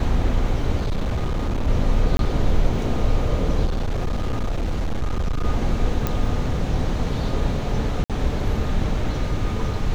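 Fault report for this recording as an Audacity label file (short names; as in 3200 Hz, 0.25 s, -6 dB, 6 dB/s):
0.770000	1.680000	clipped -19 dBFS
2.170000	2.190000	gap 22 ms
3.650000	5.450000	clipped -19 dBFS
6.070000	6.070000	pop -9 dBFS
8.040000	8.100000	gap 57 ms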